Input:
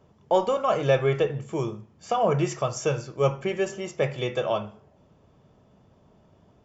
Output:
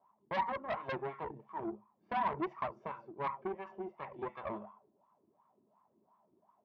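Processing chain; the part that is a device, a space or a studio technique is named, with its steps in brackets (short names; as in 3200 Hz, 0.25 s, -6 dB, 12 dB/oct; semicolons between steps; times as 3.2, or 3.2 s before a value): wah-wah guitar rig (wah 2.8 Hz 330–1100 Hz, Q 5.7; tube stage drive 33 dB, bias 0.7; speaker cabinet 77–4400 Hz, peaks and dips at 210 Hz +9 dB, 490 Hz -10 dB, 1000 Hz +9 dB, 2100 Hz +5 dB); gain +1.5 dB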